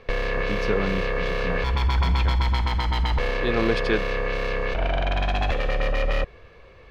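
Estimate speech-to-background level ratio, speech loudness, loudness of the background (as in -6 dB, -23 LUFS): -4.5 dB, -30.0 LUFS, -25.5 LUFS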